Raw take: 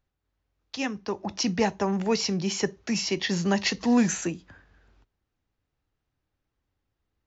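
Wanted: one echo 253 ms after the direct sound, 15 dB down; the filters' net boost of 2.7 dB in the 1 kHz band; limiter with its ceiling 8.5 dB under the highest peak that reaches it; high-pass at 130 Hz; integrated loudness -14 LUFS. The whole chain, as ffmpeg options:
-af "highpass=130,equalizer=f=1000:t=o:g=3.5,alimiter=limit=0.126:level=0:latency=1,aecho=1:1:253:0.178,volume=5.31"

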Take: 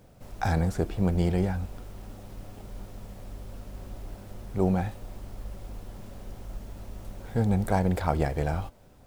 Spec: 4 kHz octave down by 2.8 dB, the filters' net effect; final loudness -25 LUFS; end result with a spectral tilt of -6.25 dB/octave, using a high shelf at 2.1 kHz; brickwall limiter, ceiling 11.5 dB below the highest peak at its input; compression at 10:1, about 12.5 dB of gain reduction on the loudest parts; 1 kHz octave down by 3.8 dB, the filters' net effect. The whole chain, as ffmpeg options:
-af "equalizer=f=1000:t=o:g=-6,highshelf=f=2100:g=3.5,equalizer=f=4000:t=o:g=-7,acompressor=threshold=0.0224:ratio=10,volume=9.44,alimiter=limit=0.2:level=0:latency=1"

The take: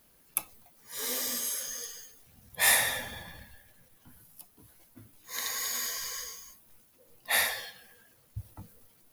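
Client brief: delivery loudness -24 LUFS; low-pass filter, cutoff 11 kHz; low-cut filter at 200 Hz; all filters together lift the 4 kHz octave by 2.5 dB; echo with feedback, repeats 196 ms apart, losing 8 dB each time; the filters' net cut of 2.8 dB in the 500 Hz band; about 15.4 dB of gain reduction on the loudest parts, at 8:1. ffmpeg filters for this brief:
-af "highpass=200,lowpass=11000,equalizer=f=500:t=o:g=-3.5,equalizer=f=4000:t=o:g=3,acompressor=threshold=0.0178:ratio=8,aecho=1:1:196|392|588|784|980:0.398|0.159|0.0637|0.0255|0.0102,volume=5.01"

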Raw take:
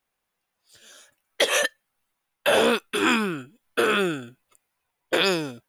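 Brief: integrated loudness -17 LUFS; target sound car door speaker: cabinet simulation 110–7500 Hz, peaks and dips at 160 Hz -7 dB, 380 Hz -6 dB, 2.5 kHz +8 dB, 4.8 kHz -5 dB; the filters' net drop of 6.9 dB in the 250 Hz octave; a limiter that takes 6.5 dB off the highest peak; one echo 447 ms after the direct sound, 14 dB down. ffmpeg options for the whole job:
-af "equalizer=f=250:t=o:g=-6,alimiter=limit=0.188:level=0:latency=1,highpass=110,equalizer=f=160:t=q:w=4:g=-7,equalizer=f=380:t=q:w=4:g=-6,equalizer=f=2500:t=q:w=4:g=8,equalizer=f=4800:t=q:w=4:g=-5,lowpass=f=7500:w=0.5412,lowpass=f=7500:w=1.3066,aecho=1:1:447:0.2,volume=2.51"

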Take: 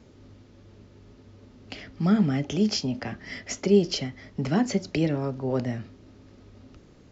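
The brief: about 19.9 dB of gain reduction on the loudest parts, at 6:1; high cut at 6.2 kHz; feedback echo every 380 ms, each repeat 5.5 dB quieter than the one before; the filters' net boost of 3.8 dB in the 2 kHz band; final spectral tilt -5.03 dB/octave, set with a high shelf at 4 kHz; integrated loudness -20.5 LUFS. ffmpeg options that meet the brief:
-af "lowpass=6200,equalizer=f=2000:t=o:g=5.5,highshelf=f=4000:g=-4.5,acompressor=threshold=0.0141:ratio=6,aecho=1:1:380|760|1140|1520|1900|2280|2660:0.531|0.281|0.149|0.079|0.0419|0.0222|0.0118,volume=10"

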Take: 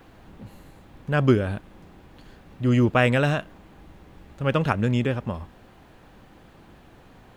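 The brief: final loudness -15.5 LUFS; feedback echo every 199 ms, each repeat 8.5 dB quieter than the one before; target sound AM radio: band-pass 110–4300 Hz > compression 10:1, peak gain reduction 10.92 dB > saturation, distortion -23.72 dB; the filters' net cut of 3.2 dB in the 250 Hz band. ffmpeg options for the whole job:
-af "highpass=110,lowpass=4300,equalizer=f=250:t=o:g=-3.5,aecho=1:1:199|398|597|796:0.376|0.143|0.0543|0.0206,acompressor=threshold=0.0631:ratio=10,asoftclip=threshold=0.158,volume=6.31"

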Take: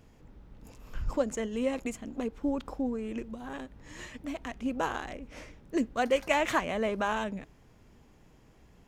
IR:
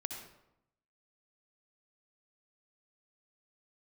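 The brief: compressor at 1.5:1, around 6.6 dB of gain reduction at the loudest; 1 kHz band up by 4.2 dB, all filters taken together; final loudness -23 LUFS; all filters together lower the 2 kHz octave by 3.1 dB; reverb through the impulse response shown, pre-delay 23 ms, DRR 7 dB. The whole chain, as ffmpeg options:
-filter_complex "[0:a]equalizer=f=1000:t=o:g=6.5,equalizer=f=2000:t=o:g=-6.5,acompressor=threshold=0.0112:ratio=1.5,asplit=2[s0][s1];[1:a]atrim=start_sample=2205,adelay=23[s2];[s1][s2]afir=irnorm=-1:irlink=0,volume=0.473[s3];[s0][s3]amix=inputs=2:normalize=0,volume=4.47"

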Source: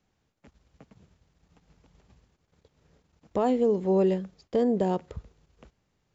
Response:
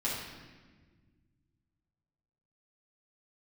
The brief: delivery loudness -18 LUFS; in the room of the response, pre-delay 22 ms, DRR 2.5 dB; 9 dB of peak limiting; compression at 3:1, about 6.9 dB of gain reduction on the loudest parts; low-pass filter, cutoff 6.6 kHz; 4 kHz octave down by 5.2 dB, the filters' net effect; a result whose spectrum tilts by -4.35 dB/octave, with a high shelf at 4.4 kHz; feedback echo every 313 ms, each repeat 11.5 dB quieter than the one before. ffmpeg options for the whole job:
-filter_complex "[0:a]lowpass=6600,equalizer=f=4000:t=o:g=-3.5,highshelf=f=4400:g=-7.5,acompressor=threshold=0.0355:ratio=3,alimiter=level_in=1.58:limit=0.0631:level=0:latency=1,volume=0.631,aecho=1:1:313|626|939:0.266|0.0718|0.0194,asplit=2[s0][s1];[1:a]atrim=start_sample=2205,adelay=22[s2];[s1][s2]afir=irnorm=-1:irlink=0,volume=0.376[s3];[s0][s3]amix=inputs=2:normalize=0,volume=6.68"

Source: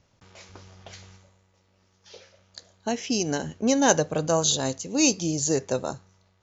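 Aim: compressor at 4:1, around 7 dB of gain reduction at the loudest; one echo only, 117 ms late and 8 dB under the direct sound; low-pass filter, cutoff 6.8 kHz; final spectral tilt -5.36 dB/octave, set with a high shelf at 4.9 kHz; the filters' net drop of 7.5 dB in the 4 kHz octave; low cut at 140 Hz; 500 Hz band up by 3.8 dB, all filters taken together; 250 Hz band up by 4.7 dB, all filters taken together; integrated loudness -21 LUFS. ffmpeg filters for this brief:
-af "highpass=140,lowpass=6800,equalizer=f=250:t=o:g=5,equalizer=f=500:t=o:g=3.5,equalizer=f=4000:t=o:g=-4.5,highshelf=f=4900:g=-8.5,acompressor=threshold=0.0794:ratio=4,aecho=1:1:117:0.398,volume=2"

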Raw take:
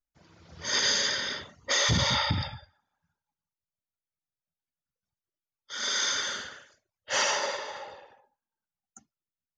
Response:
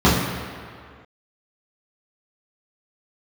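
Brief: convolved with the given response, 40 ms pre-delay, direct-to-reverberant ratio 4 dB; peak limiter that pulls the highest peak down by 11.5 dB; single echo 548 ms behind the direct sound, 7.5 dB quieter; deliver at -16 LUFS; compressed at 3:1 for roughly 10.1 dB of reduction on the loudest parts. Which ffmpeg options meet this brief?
-filter_complex "[0:a]acompressor=threshold=0.0178:ratio=3,alimiter=level_in=3.35:limit=0.0631:level=0:latency=1,volume=0.299,aecho=1:1:548:0.422,asplit=2[s0][s1];[1:a]atrim=start_sample=2205,adelay=40[s2];[s1][s2]afir=irnorm=-1:irlink=0,volume=0.0376[s3];[s0][s3]amix=inputs=2:normalize=0,volume=17.8"

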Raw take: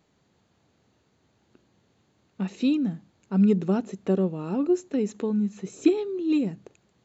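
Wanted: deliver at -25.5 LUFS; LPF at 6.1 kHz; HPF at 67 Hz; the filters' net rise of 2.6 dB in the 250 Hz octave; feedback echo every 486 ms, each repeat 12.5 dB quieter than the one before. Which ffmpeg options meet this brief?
-af "highpass=67,lowpass=6100,equalizer=f=250:t=o:g=3.5,aecho=1:1:486|972|1458:0.237|0.0569|0.0137,volume=0.794"

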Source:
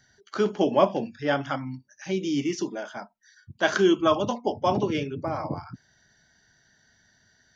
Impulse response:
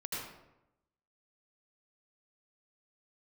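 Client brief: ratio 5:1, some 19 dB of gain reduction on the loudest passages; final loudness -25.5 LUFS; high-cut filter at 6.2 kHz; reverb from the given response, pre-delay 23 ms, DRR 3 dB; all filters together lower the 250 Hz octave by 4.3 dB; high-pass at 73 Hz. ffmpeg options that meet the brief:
-filter_complex "[0:a]highpass=73,lowpass=6200,equalizer=f=250:t=o:g=-6.5,acompressor=threshold=0.0141:ratio=5,asplit=2[s0][s1];[1:a]atrim=start_sample=2205,adelay=23[s2];[s1][s2]afir=irnorm=-1:irlink=0,volume=0.562[s3];[s0][s3]amix=inputs=2:normalize=0,volume=4.73"

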